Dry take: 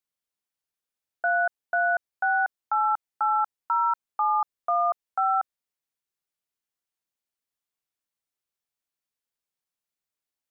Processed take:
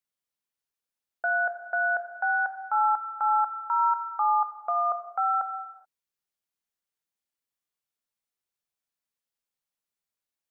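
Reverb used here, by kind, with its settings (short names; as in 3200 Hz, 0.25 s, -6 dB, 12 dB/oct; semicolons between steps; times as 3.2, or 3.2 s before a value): non-linear reverb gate 0.45 s falling, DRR 7 dB; gain -2 dB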